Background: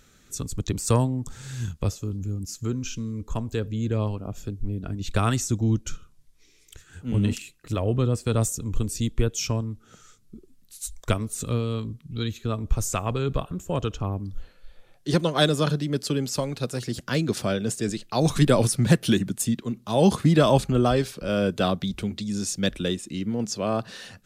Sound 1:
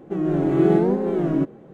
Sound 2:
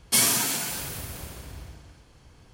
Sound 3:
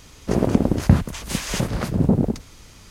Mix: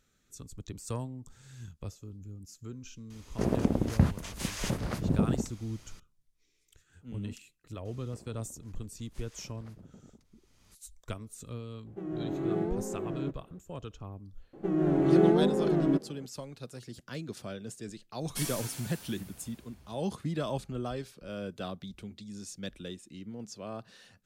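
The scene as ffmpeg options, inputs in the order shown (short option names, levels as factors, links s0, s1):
-filter_complex "[3:a]asplit=2[s0][s1];[1:a]asplit=2[s2][s3];[0:a]volume=0.178[s4];[s1]acompressor=threshold=0.0282:ratio=20:attack=2.9:release=914:knee=1:detection=peak[s5];[s0]atrim=end=2.9,asetpts=PTS-STARTPTS,volume=0.355,afade=t=in:d=0.004:c=hsin,afade=t=out:st=2.896:d=0.004:c=hsin,adelay=3100[s6];[s5]atrim=end=2.9,asetpts=PTS-STARTPTS,volume=0.178,afade=t=in:d=0.004:c=hsin,afade=t=out:st=2.896:d=0.004:c=hsin,adelay=7850[s7];[s2]atrim=end=1.73,asetpts=PTS-STARTPTS,volume=0.2,afade=t=in:d=0.004:c=hsin,afade=t=out:st=1.726:d=0.004:c=hsin,adelay=523026S[s8];[s3]atrim=end=1.73,asetpts=PTS-STARTPTS,volume=0.562,afade=t=in:d=0.004:c=hsin,afade=t=out:st=1.726:d=0.004:c=hsin,adelay=14530[s9];[2:a]atrim=end=2.53,asetpts=PTS-STARTPTS,volume=0.15,afade=t=in:d=0.004:c=hsin,afade=t=out:st=2.526:d=0.004:c=hsin,adelay=18230[s10];[s4][s6][s7][s8][s9][s10]amix=inputs=6:normalize=0"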